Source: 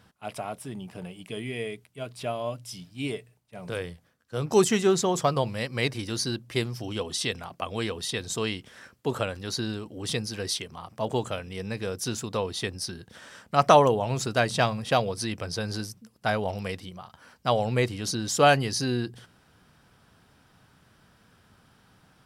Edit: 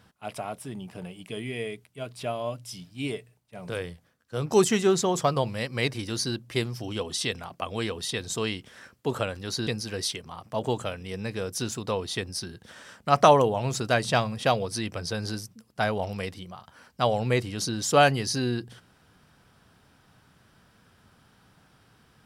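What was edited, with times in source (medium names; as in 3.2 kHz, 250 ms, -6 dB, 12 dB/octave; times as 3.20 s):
9.67–10.13 s: delete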